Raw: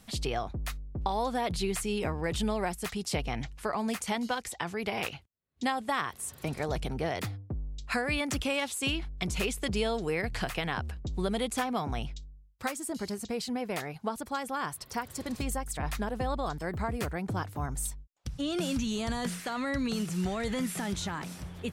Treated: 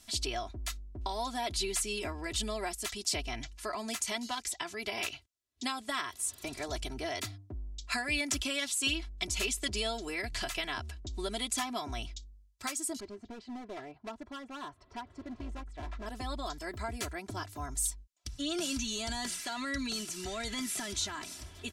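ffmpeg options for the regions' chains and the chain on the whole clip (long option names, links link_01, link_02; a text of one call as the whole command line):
ffmpeg -i in.wav -filter_complex "[0:a]asettb=1/sr,asplit=3[link_01][link_02][link_03];[link_01]atrim=end=13.004[link_04];[link_02]atrim=start=13:end=16.06,asetpts=PTS-STARTPTS,afade=type=in:duration=0.004:curve=qsin,afade=type=out:start_time=3.056:duration=0.004:curve=qsin,lowpass=1200,asoftclip=type=hard:threshold=-31.5dB[link_05];[link_03]atrim=start=16.056[link_06];[link_04][link_05]acrossfade=duration=0.004:curve1=hsin:curve2=qsin[link_07];[link_07][link_06]acrossfade=duration=0.004:curve1=qsin:curve2=hsin,equalizer=frequency=6200:width_type=o:width=2.4:gain=12,aecho=1:1:3:0.83,volume=-8.5dB" out.wav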